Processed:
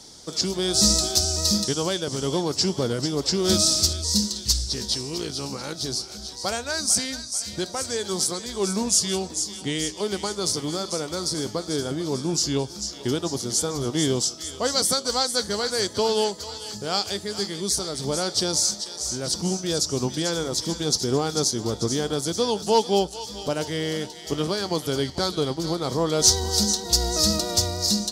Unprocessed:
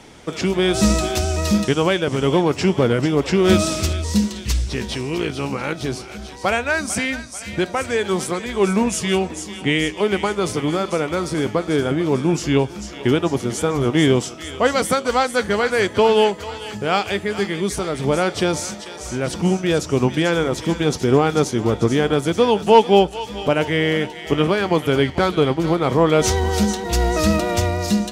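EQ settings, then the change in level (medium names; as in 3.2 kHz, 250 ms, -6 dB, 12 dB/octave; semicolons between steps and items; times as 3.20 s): resonant high shelf 3.4 kHz +11 dB, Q 3; -8.0 dB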